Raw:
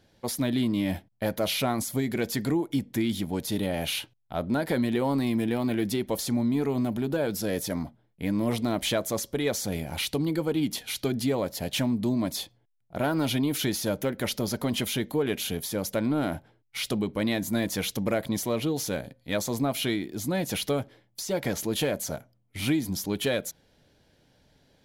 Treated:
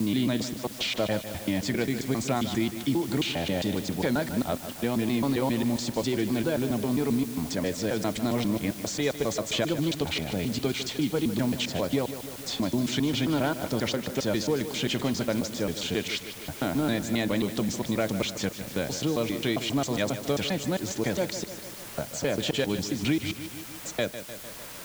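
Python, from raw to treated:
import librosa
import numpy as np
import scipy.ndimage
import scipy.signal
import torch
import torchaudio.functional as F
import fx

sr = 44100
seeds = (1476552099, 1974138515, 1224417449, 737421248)

p1 = fx.block_reorder(x, sr, ms=134.0, group=6)
p2 = scipy.signal.sosfilt(scipy.signal.ellip(4, 1.0, 40, 7900.0, 'lowpass', fs=sr, output='sos'), p1)
p3 = fx.quant_dither(p2, sr, seeds[0], bits=6, dither='triangular')
p4 = p2 + F.gain(torch.from_numpy(p3), -8.5).numpy()
p5 = fx.echo_feedback(p4, sr, ms=151, feedback_pct=54, wet_db=-12.5)
p6 = fx.band_squash(p5, sr, depth_pct=40)
y = F.gain(torch.from_numpy(p6), -2.0).numpy()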